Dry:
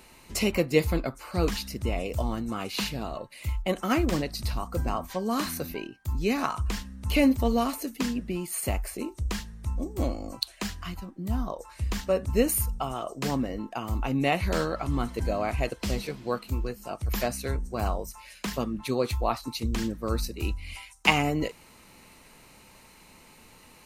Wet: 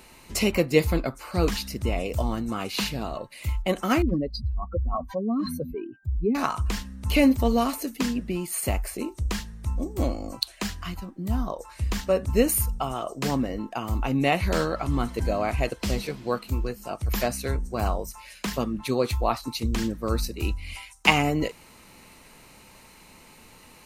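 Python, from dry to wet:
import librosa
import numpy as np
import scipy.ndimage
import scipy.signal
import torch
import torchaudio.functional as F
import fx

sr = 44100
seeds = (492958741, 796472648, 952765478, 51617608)

y = fx.spec_expand(x, sr, power=2.5, at=(4.02, 6.35))
y = F.gain(torch.from_numpy(y), 2.5).numpy()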